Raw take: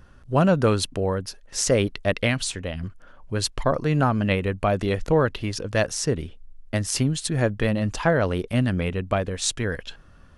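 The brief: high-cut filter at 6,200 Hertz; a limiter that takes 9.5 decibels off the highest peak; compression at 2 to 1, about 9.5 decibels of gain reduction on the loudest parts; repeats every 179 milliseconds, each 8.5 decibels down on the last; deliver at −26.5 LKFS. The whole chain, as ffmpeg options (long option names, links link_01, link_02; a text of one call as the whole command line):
ffmpeg -i in.wav -af "lowpass=6200,acompressor=threshold=-32dB:ratio=2,alimiter=limit=-24dB:level=0:latency=1,aecho=1:1:179|358|537|716:0.376|0.143|0.0543|0.0206,volume=8dB" out.wav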